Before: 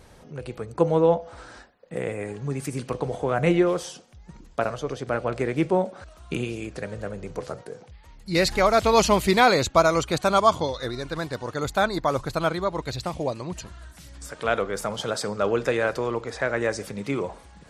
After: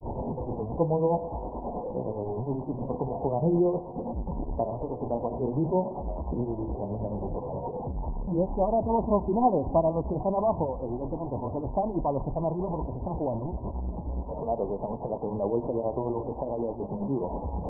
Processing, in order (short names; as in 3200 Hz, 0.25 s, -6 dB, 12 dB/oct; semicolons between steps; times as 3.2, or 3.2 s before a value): delta modulation 32 kbps, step -24 dBFS; flange 0.44 Hz, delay 2.9 ms, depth 2 ms, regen -76%; in parallel at -1.5 dB: limiter -20.5 dBFS, peak gain reduction 11 dB; on the sum: steep low-pass 980 Hz 96 dB/oct; grains 0.182 s, grains 9.5/s, spray 14 ms, pitch spread up and down by 0 st; dynamic EQ 490 Hz, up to -4 dB, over -36 dBFS, Q 3.4; on a send at -19 dB: reverb RT60 1.5 s, pre-delay 4 ms